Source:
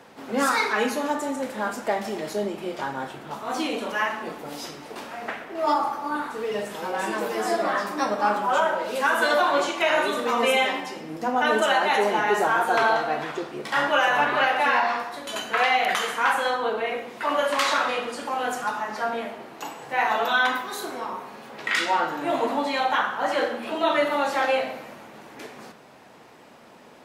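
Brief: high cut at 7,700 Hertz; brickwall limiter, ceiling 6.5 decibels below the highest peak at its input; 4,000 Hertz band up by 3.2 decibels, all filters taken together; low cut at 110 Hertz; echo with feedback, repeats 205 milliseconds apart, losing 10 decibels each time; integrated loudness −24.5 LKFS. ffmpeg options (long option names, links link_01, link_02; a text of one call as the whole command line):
ffmpeg -i in.wav -af "highpass=110,lowpass=7700,equalizer=frequency=4000:width_type=o:gain=4.5,alimiter=limit=-14.5dB:level=0:latency=1,aecho=1:1:205|410|615|820:0.316|0.101|0.0324|0.0104,volume=0.5dB" out.wav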